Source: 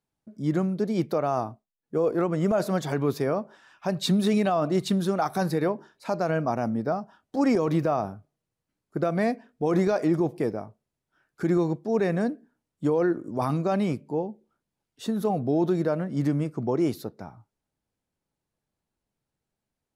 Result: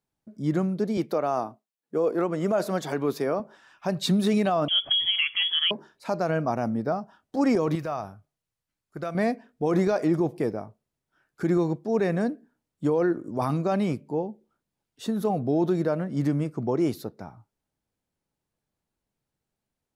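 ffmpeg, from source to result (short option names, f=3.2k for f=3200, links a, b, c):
-filter_complex "[0:a]asettb=1/sr,asplit=3[a][b][c];[a]atrim=end=0.974[d];[b]atrim=start=0.97:end=3.4,asetpts=PTS-STARTPTS,afade=t=in:d=0.004:c=qsin,afade=t=out:st=2.426:d=0.004:c=qsin,highpass=200[e];[c]atrim=start=3.396[f];[d][e]acrossfade=d=0.004:c1=hsin:c2=qsin[g];[g][f]acrossfade=d=0.004:c1=qsin:c2=hsin,asettb=1/sr,asplit=3[h][i][j];[h]atrim=end=4.684[k];[i]atrim=start=4.68:end=5.71,asetpts=PTS-STARTPTS,afade=t=in:d=0.004:c=qsin,afade=t=out:st=1.026:d=0.004:c=qsin,lowpass=f=3k:t=q:w=0.5098,lowpass=f=3k:t=q:w=0.6013,lowpass=f=3k:t=q:w=0.9,lowpass=f=3k:t=q:w=2.563,afreqshift=-3500[l];[j]atrim=start=5.706[m];[k][l]acrossfade=d=0.004:c1=hsin:c2=qsin[n];[n][m]acrossfade=d=0.004:c1=qsin:c2=hsin,asettb=1/sr,asplit=3[o][p][q];[o]atrim=end=7.754[r];[p]atrim=start=7.75:end=9.15,asetpts=PTS-STARTPTS,afade=t=in:d=0.004:c=qsin,afade=t=out:st=1.396:d=0.004:c=qsin,equalizer=f=300:w=0.42:g=-9.5[s];[q]atrim=start=9.146[t];[r][s]acrossfade=d=0.004:c1=hsin:c2=qsin[u];[u][t]acrossfade=d=0.004:c1=qsin:c2=hsin"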